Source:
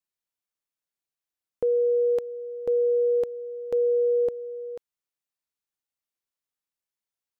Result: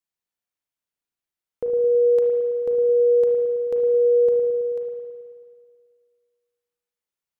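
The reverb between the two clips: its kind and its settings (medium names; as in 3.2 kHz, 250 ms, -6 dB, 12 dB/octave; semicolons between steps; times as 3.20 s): spring tank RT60 2 s, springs 36/54 ms, chirp 45 ms, DRR 0.5 dB; trim -1 dB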